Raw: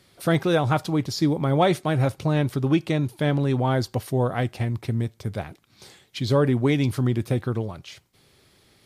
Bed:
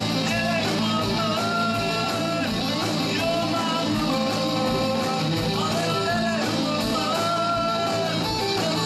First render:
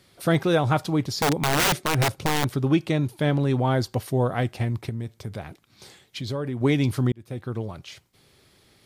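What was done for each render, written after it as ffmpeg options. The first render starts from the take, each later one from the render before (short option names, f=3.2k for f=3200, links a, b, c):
-filter_complex "[0:a]asettb=1/sr,asplit=3[a][b][c];[a]atrim=end=1.114[d];[b]atrim=start=1.11:end=2.49,asetpts=PTS-STARTPTS,afade=t=in:d=0.004:c=qsin,afade=t=out:st=1.376:d=0.004:c=qsin,aeval=exprs='(mod(6.31*val(0)+1,2)-1)/6.31':c=same[e];[c]atrim=start=2.486[f];[d][e]acrossfade=d=0.004:c1=hsin:c2=qsin[g];[g][f]acrossfade=d=0.004:c1=qsin:c2=hsin,asettb=1/sr,asplit=3[h][i][j];[h]atrim=end=4.894[k];[i]atrim=start=4.89:end=6.61,asetpts=PTS-STARTPTS,afade=t=in:d=0.004:c=qsin,afade=t=out:st=1.716:d=0.004:c=qsin,acompressor=threshold=-30dB:ratio=2.5:attack=3.2:release=140:knee=1:detection=peak[l];[j]atrim=start=6.606[m];[k][l]acrossfade=d=0.004:c1=hsin:c2=qsin[n];[n][m]acrossfade=d=0.004:c1=qsin:c2=hsin,asplit=2[o][p];[o]atrim=end=7.12,asetpts=PTS-STARTPTS,afade=t=out:st=7.116:d=0.004:c=hsin[q];[p]atrim=start=7.12,asetpts=PTS-STARTPTS,afade=t=in:d=0.67[r];[q][r]concat=n=2:v=0:a=1"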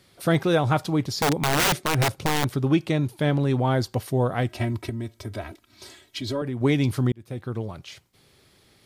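-filter_complex "[0:a]asettb=1/sr,asplit=3[a][b][c];[a]atrim=end=4.494[d];[b]atrim=start=4.49:end=6.42,asetpts=PTS-STARTPTS,afade=t=in:d=0.004:c=qsin,afade=t=out:st=1.926:d=0.004:c=qsin,aecho=1:1:3.1:0.97,atrim=end_sample=85113[e];[c]atrim=start=6.416[f];[d][e]acrossfade=d=0.004:c1=hsin:c2=qsin[g];[g][f]acrossfade=d=0.004:c1=qsin:c2=hsin"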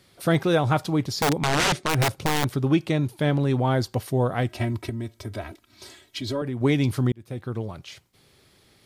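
-filter_complex "[0:a]asettb=1/sr,asplit=3[a][b][c];[a]atrim=end=1.384[d];[b]atrim=start=1.38:end=1.89,asetpts=PTS-STARTPTS,afade=t=in:d=0.004:c=qsin,afade=t=out:st=0.506:d=0.004:c=qsin,lowpass=8k[e];[c]atrim=start=1.886[f];[d][e]acrossfade=d=0.004:c1=hsin:c2=qsin[g];[g][f]acrossfade=d=0.004:c1=qsin:c2=hsin"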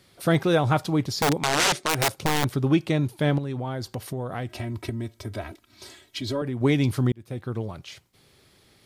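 -filter_complex "[0:a]asettb=1/sr,asplit=3[a][b][c];[a]atrim=end=1.374[d];[b]atrim=start=1.37:end=2.22,asetpts=PTS-STARTPTS,afade=t=in:d=0.004:c=qsin,afade=t=out:st=0.846:d=0.004:c=qsin,bass=f=250:g=-8,treble=f=4k:g=4[e];[c]atrim=start=2.216[f];[d][e]acrossfade=d=0.004:c1=hsin:c2=qsin[g];[g][f]acrossfade=d=0.004:c1=qsin:c2=hsin,asettb=1/sr,asplit=3[h][i][j];[h]atrim=end=3.384[k];[i]atrim=start=3.38:end=4.77,asetpts=PTS-STARTPTS,afade=t=in:d=0.004:c=qsin,afade=t=out:st=1.386:d=0.004:c=qsin,acompressor=threshold=-27dB:ratio=6:attack=3.2:release=140:knee=1:detection=peak[l];[j]atrim=start=4.766[m];[k][l]acrossfade=d=0.004:c1=hsin:c2=qsin[n];[n][m]acrossfade=d=0.004:c1=qsin:c2=hsin"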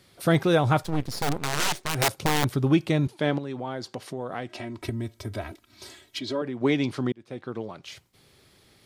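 -filter_complex "[0:a]asplit=3[a][b][c];[a]afade=t=out:st=0.82:d=0.02[d];[b]aeval=exprs='max(val(0),0)':c=same,afade=t=in:st=0.82:d=0.02,afade=t=out:st=1.94:d=0.02[e];[c]afade=t=in:st=1.94:d=0.02[f];[d][e][f]amix=inputs=3:normalize=0,asettb=1/sr,asplit=3[g][h][i];[g]atrim=end=3.074[j];[h]atrim=start=3.07:end=4.82,asetpts=PTS-STARTPTS,afade=t=in:d=0.004:c=qsin,afade=t=out:st=1.746:d=0.004:c=qsin,highpass=210,lowpass=7.4k[k];[i]atrim=start=4.816[l];[j][k]acrossfade=d=0.004:c1=hsin:c2=qsin[m];[m][l]acrossfade=d=0.004:c1=qsin:c2=hsin,asettb=1/sr,asplit=3[n][o][p];[n]atrim=end=6.194[q];[o]atrim=start=6.19:end=7.84,asetpts=PTS-STARTPTS,afade=t=in:d=0.004:c=qsin,afade=t=out:st=1.646:d=0.004:c=qsin,highpass=220,lowpass=5.8k[r];[p]atrim=start=7.836[s];[q][r]acrossfade=d=0.004:c1=hsin:c2=qsin[t];[t][s]acrossfade=d=0.004:c1=qsin:c2=hsin"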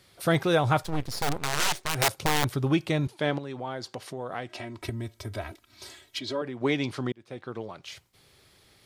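-af "equalizer=f=230:w=0.78:g=-5"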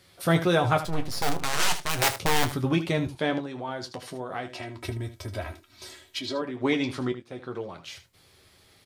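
-filter_complex "[0:a]asplit=2[a][b];[b]adelay=24,volume=-12dB[c];[a][c]amix=inputs=2:normalize=0,aecho=1:1:11|78:0.447|0.237"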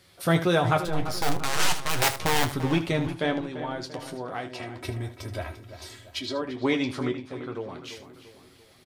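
-filter_complex "[0:a]asplit=2[a][b];[b]adelay=342,lowpass=f=2.8k:p=1,volume=-11.5dB,asplit=2[c][d];[d]adelay=342,lowpass=f=2.8k:p=1,volume=0.49,asplit=2[e][f];[f]adelay=342,lowpass=f=2.8k:p=1,volume=0.49,asplit=2[g][h];[h]adelay=342,lowpass=f=2.8k:p=1,volume=0.49,asplit=2[i][j];[j]adelay=342,lowpass=f=2.8k:p=1,volume=0.49[k];[a][c][e][g][i][k]amix=inputs=6:normalize=0"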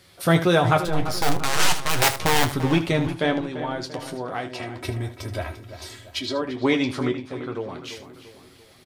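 -af "volume=4dB"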